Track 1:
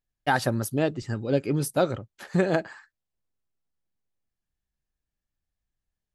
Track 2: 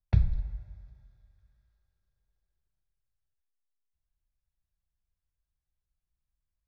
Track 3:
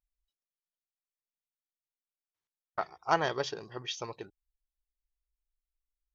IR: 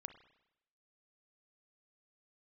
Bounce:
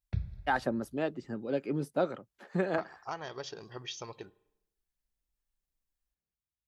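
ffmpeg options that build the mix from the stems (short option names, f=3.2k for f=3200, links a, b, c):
-filter_complex "[0:a]highpass=f=170:w=0.5412,highpass=f=170:w=1.3066,acrossover=split=690[a][b];[a]aeval=exprs='val(0)*(1-0.5/2+0.5/2*cos(2*PI*1.8*n/s))':c=same[c];[b]aeval=exprs='val(0)*(1-0.5/2-0.5/2*cos(2*PI*1.8*n/s))':c=same[d];[c][d]amix=inputs=2:normalize=0,lowpass=f=1.9k:p=1,adelay=200,volume=-3dB[e];[1:a]highpass=70,equalizer=f=840:w=1.5:g=-7,volume=-8dB[f];[2:a]bass=f=250:g=2,treble=f=4k:g=4,acompressor=threshold=-36dB:ratio=4,volume=-4dB,asplit=2[g][h];[h]volume=-4dB[i];[3:a]atrim=start_sample=2205[j];[i][j]afir=irnorm=-1:irlink=0[k];[e][f][g][k]amix=inputs=4:normalize=0"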